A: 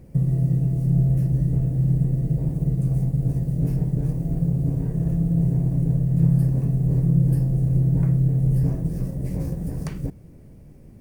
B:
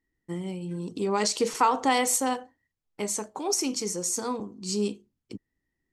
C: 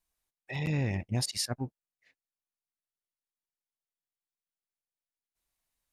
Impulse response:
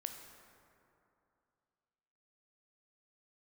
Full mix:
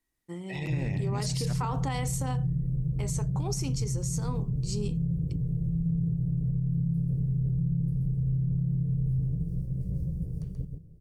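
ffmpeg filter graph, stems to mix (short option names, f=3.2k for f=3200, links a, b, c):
-filter_complex "[0:a]firequalizer=gain_entry='entry(160,0);entry(240,-14);entry(440,-7);entry(730,-21);entry(1200,-23);entry(2200,-25);entry(3200,-15)':delay=0.05:min_phase=1,adelay=550,volume=-5.5dB,asplit=2[a][b];[b]volume=-5dB[c];[1:a]volume=-5.5dB[d];[2:a]volume=-1.5dB,asplit=2[e][f];[f]volume=-10dB[g];[c][g]amix=inputs=2:normalize=0,aecho=0:1:132:1[h];[a][d][e][h]amix=inputs=4:normalize=0,alimiter=limit=-21.5dB:level=0:latency=1:release=62"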